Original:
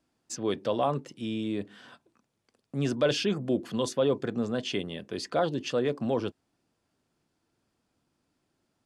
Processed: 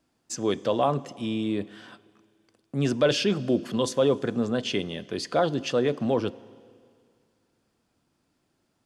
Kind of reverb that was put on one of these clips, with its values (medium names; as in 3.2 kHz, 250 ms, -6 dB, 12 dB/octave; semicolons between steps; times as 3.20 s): Schroeder reverb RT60 2.2 s, combs from 33 ms, DRR 19.5 dB; trim +3.5 dB